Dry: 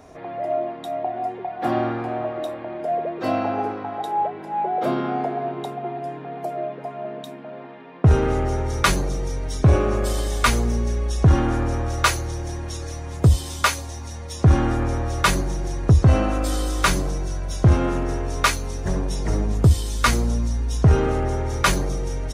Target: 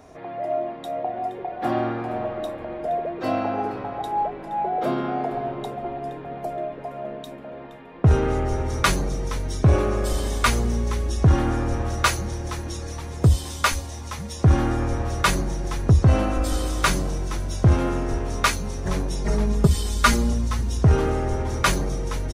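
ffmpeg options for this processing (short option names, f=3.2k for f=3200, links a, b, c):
-filter_complex "[0:a]asettb=1/sr,asplit=3[a][b][c];[a]atrim=end=19.244[d];[b]atrim=start=19.24:end=20.33,asetpts=PTS-STARTPTS,afade=t=in:d=0.004:c=qsin,afade=t=out:st=1.086:d=0.004:c=qsin,aecho=1:1:4.9:0.8,atrim=end_sample=48069[e];[c]atrim=start=20.326[f];[d][e]acrossfade=d=0.004:c1=hsin:c2=qsin[g];[g][f]acrossfade=d=0.004:c1=qsin:c2=hsin,asplit=2[h][i];[i]asplit=4[j][k][l][m];[j]adelay=470,afreqshift=-140,volume=-15.5dB[n];[k]adelay=940,afreqshift=-280,volume=-21.9dB[o];[l]adelay=1410,afreqshift=-420,volume=-28.3dB[p];[m]adelay=1880,afreqshift=-560,volume=-34.6dB[q];[n][o][p][q]amix=inputs=4:normalize=0[r];[h][r]amix=inputs=2:normalize=0,volume=-1.5dB"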